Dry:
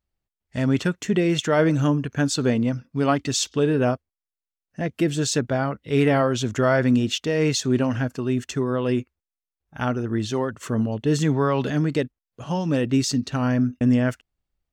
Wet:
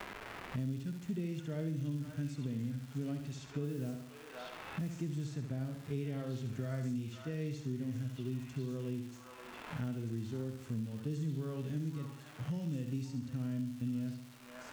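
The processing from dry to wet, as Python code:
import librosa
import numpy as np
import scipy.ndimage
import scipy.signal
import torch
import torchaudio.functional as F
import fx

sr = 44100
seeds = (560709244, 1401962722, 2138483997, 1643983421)

p1 = fx.tone_stack(x, sr, knobs='10-0-1')
p2 = fx.dmg_crackle(p1, sr, seeds[0], per_s=430.0, level_db=-47.0)
p3 = fx.low_shelf(p2, sr, hz=110.0, db=-7.0)
p4 = p3 + fx.echo_stepped(p3, sr, ms=525, hz=1100.0, octaves=1.4, feedback_pct=70, wet_db=-3, dry=0)
p5 = fx.mod_noise(p4, sr, seeds[1], snr_db=19, at=(3.63, 5.01), fade=0.02)
p6 = fx.hpss(p5, sr, part='percussive', gain_db=-10)
p7 = fx.room_flutter(p6, sr, wall_m=11.8, rt60_s=0.55)
p8 = fx.band_squash(p7, sr, depth_pct=100)
y = F.gain(torch.from_numpy(p8), 2.0).numpy()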